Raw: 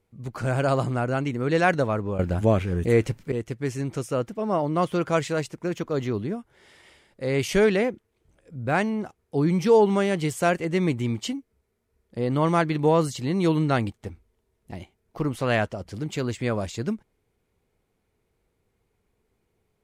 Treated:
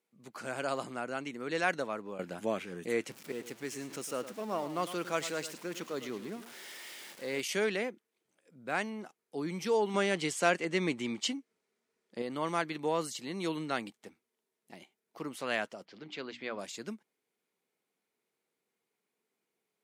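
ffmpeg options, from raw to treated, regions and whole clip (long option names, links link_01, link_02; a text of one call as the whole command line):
ffmpeg -i in.wav -filter_complex "[0:a]asettb=1/sr,asplit=3[link_01][link_02][link_03];[link_01]atrim=end=3.114[link_04];[link_02]atrim=start=3.11:end=7.41,asetpts=PTS-STARTPTS,afade=type=in:duration=0.004:curve=qsin,afade=type=out:start_time=4.296:duration=0.004:curve=qsin,aeval=exprs='val(0)+0.5*0.0141*sgn(val(0))':channel_layout=same,aecho=1:1:106:0.237,atrim=end_sample=189630[link_05];[link_03]atrim=start=7.406[link_06];[link_04][link_05]acrossfade=duration=0.004:curve1=hsin:curve2=qsin[link_07];[link_07][link_06]acrossfade=duration=0.004:curve1=qsin:curve2=hsin,asettb=1/sr,asplit=3[link_08][link_09][link_10];[link_08]atrim=end=9.944[link_11];[link_09]atrim=start=9.94:end=12.22,asetpts=PTS-STARTPTS,afade=type=in:duration=0.004:curve=qsin,afade=type=out:start_time=2.276:duration=0.004:curve=qsin,lowpass=8000,acontrast=39[link_12];[link_10]atrim=start=12.216[link_13];[link_11][link_12]acrossfade=duration=0.004:curve1=hsin:curve2=qsin[link_14];[link_14][link_13]acrossfade=duration=0.004:curve1=qsin:curve2=hsin,asettb=1/sr,asplit=3[link_15][link_16][link_17];[link_15]atrim=end=15.854[link_18];[link_16]atrim=start=15.85:end=16.59,asetpts=PTS-STARTPTS,afade=type=in:duration=0.004:curve=qsin,afade=type=out:start_time=0.736:duration=0.004:curve=qsin,lowpass=frequency=4500:width=0.5412,lowpass=frequency=4500:width=1.3066,lowshelf=frequency=210:gain=-4.5,bandreject=frequency=60:width_type=h:width=6,bandreject=frequency=120:width_type=h:width=6,bandreject=frequency=180:width_type=h:width=6,bandreject=frequency=240:width_type=h:width=6,bandreject=frequency=300:width_type=h:width=6[link_19];[link_17]atrim=start=16.586[link_20];[link_18][link_19]acrossfade=duration=0.004:curve1=hsin:curve2=qsin[link_21];[link_21][link_20]acrossfade=duration=0.004:curve1=qsin:curve2=hsin,highpass=frequency=190:width=0.5412,highpass=frequency=190:width=1.3066,tiltshelf=frequency=1200:gain=-4.5,volume=-8.5dB" out.wav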